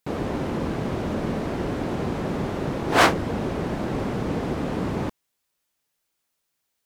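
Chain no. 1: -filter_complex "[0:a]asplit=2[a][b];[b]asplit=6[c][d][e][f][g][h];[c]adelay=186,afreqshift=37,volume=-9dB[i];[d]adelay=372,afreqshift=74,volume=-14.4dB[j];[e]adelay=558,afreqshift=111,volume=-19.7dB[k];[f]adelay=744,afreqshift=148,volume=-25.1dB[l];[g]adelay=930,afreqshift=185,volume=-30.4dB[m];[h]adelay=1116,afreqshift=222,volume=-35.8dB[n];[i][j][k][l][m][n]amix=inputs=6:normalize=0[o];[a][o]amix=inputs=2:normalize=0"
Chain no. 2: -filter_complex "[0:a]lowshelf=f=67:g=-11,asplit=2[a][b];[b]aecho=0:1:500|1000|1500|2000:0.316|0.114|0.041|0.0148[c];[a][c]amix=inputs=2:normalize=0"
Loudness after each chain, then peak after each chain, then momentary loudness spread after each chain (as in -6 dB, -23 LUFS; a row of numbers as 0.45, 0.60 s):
-25.0, -26.0 LUFS; -3.0, -4.0 dBFS; 10, 12 LU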